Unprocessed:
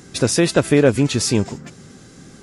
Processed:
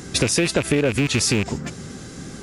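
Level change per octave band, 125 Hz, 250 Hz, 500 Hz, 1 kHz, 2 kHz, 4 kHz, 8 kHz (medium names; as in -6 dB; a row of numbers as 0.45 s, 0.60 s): -3.0 dB, -4.0 dB, -5.5 dB, -3.5 dB, +1.0 dB, +1.0 dB, +0.5 dB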